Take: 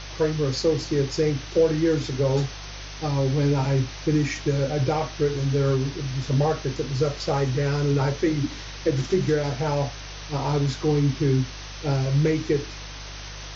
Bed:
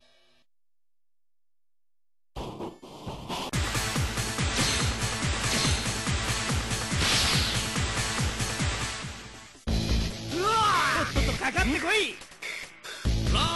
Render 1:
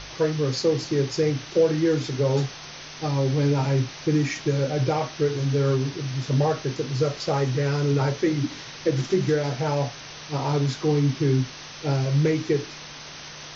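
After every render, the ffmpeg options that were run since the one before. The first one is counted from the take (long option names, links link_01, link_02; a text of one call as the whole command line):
ffmpeg -i in.wav -af "bandreject=frequency=50:width_type=h:width=4,bandreject=frequency=100:width_type=h:width=4" out.wav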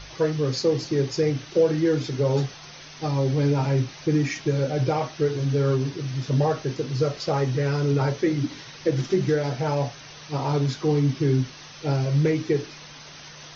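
ffmpeg -i in.wav -af "afftdn=noise_reduction=6:noise_floor=-40" out.wav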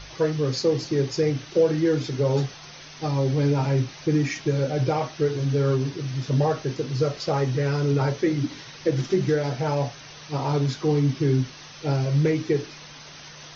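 ffmpeg -i in.wav -af anull out.wav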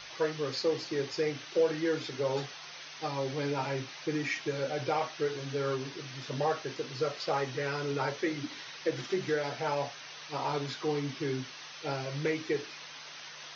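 ffmpeg -i in.wav -filter_complex "[0:a]acrossover=split=4600[link_01][link_02];[link_02]acompressor=threshold=-54dB:ratio=4:attack=1:release=60[link_03];[link_01][link_03]amix=inputs=2:normalize=0,highpass=frequency=990:poles=1" out.wav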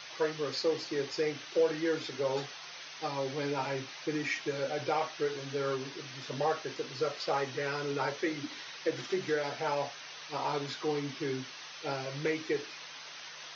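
ffmpeg -i in.wav -af "highpass=frequency=190:poles=1" out.wav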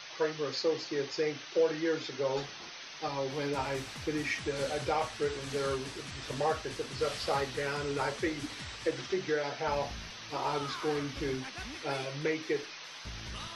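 ffmpeg -i in.wav -i bed.wav -filter_complex "[1:a]volume=-18.5dB[link_01];[0:a][link_01]amix=inputs=2:normalize=0" out.wav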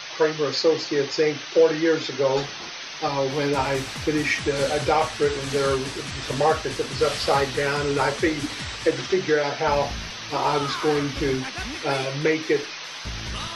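ffmpeg -i in.wav -af "volume=10.5dB" out.wav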